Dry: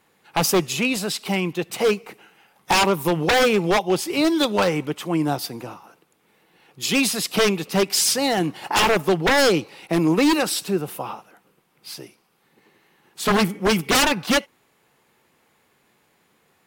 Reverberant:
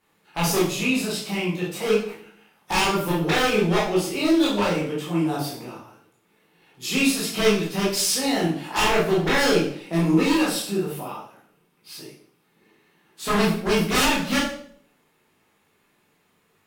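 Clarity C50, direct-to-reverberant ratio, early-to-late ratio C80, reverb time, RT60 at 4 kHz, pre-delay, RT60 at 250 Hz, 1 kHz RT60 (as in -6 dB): 3.5 dB, -7.0 dB, 8.5 dB, 0.55 s, 0.50 s, 13 ms, 0.75 s, 0.55 s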